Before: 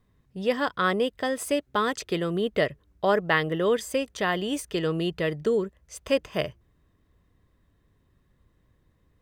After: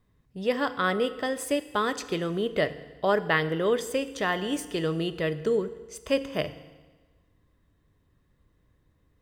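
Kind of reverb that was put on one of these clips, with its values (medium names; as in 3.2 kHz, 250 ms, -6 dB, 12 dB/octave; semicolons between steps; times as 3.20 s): FDN reverb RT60 1.3 s, low-frequency decay 1×, high-frequency decay 0.95×, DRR 11.5 dB; trim -1.5 dB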